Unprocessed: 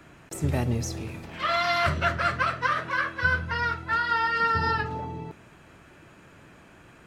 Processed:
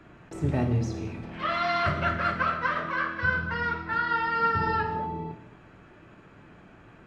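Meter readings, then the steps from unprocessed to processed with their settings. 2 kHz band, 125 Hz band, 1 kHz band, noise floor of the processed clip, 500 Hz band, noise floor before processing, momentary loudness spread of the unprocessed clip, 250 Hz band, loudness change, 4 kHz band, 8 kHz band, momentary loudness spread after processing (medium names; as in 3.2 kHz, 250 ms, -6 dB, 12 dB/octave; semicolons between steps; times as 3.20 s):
-2.0 dB, 0.0 dB, -1.0 dB, -53 dBFS, -0.5 dB, -53 dBFS, 13 LU, +2.0 dB, -1.5 dB, -5.5 dB, no reading, 11 LU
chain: tape spacing loss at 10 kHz 20 dB; gated-style reverb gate 260 ms falling, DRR 4 dB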